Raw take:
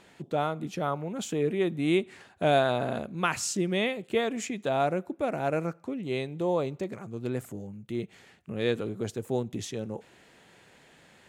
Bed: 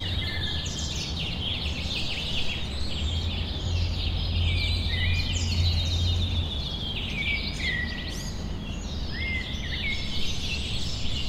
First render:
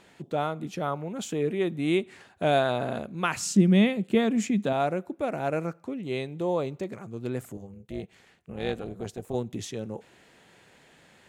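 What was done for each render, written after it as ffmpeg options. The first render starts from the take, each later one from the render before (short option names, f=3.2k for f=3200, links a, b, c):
-filter_complex "[0:a]asettb=1/sr,asplit=3[a][b][c];[a]atrim=end=3.404[d];[b]atrim=start=3.4:end=4.73,asetpts=PTS-STARTPTS,afade=t=in:d=0.004:c=qsin,afade=t=out:st=1.326:d=0.004:c=qsin,equalizer=f=200:t=o:w=0.77:g=14[e];[c]atrim=start=4.726[f];[d][e]acrossfade=d=0.004:c1=hsin:c2=qsin[g];[g][f]acrossfade=d=0.004:c1=qsin:c2=hsin,asettb=1/sr,asplit=3[h][i][j];[h]atrim=end=7.574[k];[i]atrim=start=7.57:end=9.35,asetpts=PTS-STARTPTS,afade=t=in:d=0.004:c=qsin,afade=t=out:st=1.776:d=0.004:c=qsin,tremolo=f=290:d=0.71[l];[j]atrim=start=9.346[m];[k][l]acrossfade=d=0.004:c1=hsin:c2=qsin[n];[n][m]acrossfade=d=0.004:c1=qsin:c2=hsin"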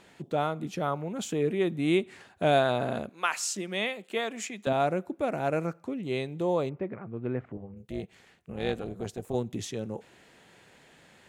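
-filter_complex "[0:a]asettb=1/sr,asplit=3[a][b][c];[a]atrim=end=3.094[d];[b]atrim=start=3.09:end=4.67,asetpts=PTS-STARTPTS,afade=t=in:d=0.004:c=qsin,afade=t=out:st=1.576:d=0.004:c=qsin,highpass=630[e];[c]atrim=start=4.666[f];[d][e]acrossfade=d=0.004:c1=hsin:c2=qsin[g];[g][f]acrossfade=d=0.004:c1=qsin:c2=hsin,asettb=1/sr,asplit=3[h][i][j];[h]atrim=end=6.694[k];[i]atrim=start=6.69:end=7.77,asetpts=PTS-STARTPTS,afade=t=in:d=0.004:c=qsin,afade=t=out:st=1.076:d=0.004:c=qsin,lowpass=f=2.3k:w=0.5412,lowpass=f=2.3k:w=1.3066[l];[j]atrim=start=7.766[m];[k][l]acrossfade=d=0.004:c1=hsin:c2=qsin[n];[n][m]acrossfade=d=0.004:c1=qsin:c2=hsin"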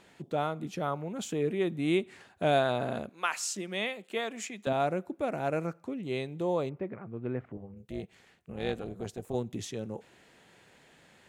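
-af "volume=-2.5dB"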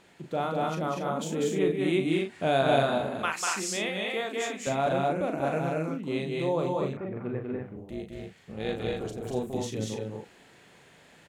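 -filter_complex "[0:a]asplit=2[a][b];[b]adelay=37,volume=-6.5dB[c];[a][c]amix=inputs=2:normalize=0,aecho=1:1:195.3|239.1:0.708|0.708"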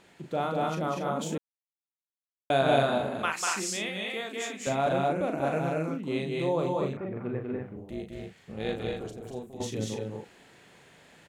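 -filter_complex "[0:a]asettb=1/sr,asplit=3[a][b][c];[a]atrim=end=3.704[d];[b]atrim=start=3.7:end=4.61,asetpts=PTS-STARTPTS,afade=t=in:d=0.004:c=qsin,afade=t=out:st=0.906:d=0.004:c=qsin,equalizer=f=670:t=o:w=2.6:g=-5.5[e];[c]atrim=start=4.606[f];[d][e]acrossfade=d=0.004:c1=hsin:c2=qsin[g];[g][f]acrossfade=d=0.004:c1=qsin:c2=hsin,asplit=4[h][i][j][k];[h]atrim=end=1.38,asetpts=PTS-STARTPTS,afade=t=out:st=1.376:d=0.004:c=hsin[l];[i]atrim=start=1.38:end=2.5,asetpts=PTS-STARTPTS,volume=0[m];[j]atrim=start=2.5:end=9.6,asetpts=PTS-STARTPTS,afade=t=in:d=0.004:c=hsin,afade=t=out:st=6.17:d=0.93:silence=0.223872[n];[k]atrim=start=9.6,asetpts=PTS-STARTPTS,afade=t=in:d=0.004:c=hsin:silence=0.223872[o];[l][m][n][o]concat=n=4:v=0:a=1"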